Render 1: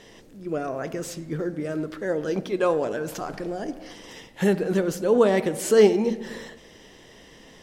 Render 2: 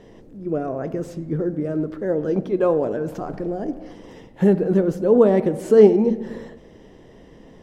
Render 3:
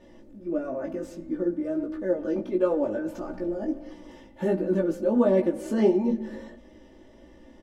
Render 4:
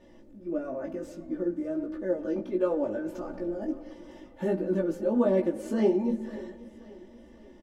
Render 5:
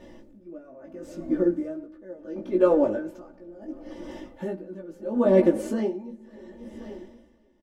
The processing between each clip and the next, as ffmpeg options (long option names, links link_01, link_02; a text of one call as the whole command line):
ffmpeg -i in.wav -af "tiltshelf=frequency=1300:gain=9.5,volume=-3dB" out.wav
ffmpeg -i in.wav -af "aecho=1:1:3.4:0.99,flanger=delay=16:depth=3:speed=1.5,volume=-4.5dB" out.wav
ffmpeg -i in.wav -af "aecho=1:1:534|1068|1602|2136:0.112|0.0516|0.0237|0.0109,volume=-3dB" out.wav
ffmpeg -i in.wav -af "aeval=exprs='val(0)*pow(10,-21*(0.5-0.5*cos(2*PI*0.73*n/s))/20)':channel_layout=same,volume=8.5dB" out.wav